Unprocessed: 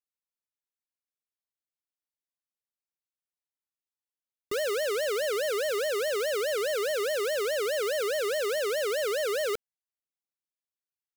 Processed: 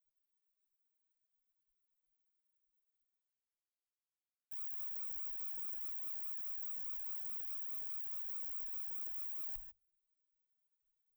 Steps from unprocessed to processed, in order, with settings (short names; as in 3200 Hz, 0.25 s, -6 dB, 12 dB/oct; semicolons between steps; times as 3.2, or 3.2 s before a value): spectral gate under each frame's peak -30 dB weak; inverse Chebyshev band-stop 170–9000 Hz, stop band 80 dB; bell 3900 Hz -9.5 dB 2.8 oct; reverse; upward compressor, threshold -49 dBFS; reverse; tube stage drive 33 dB, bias 0.3; non-linear reverb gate 0.17 s rising, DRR 7 dB; gain +13 dB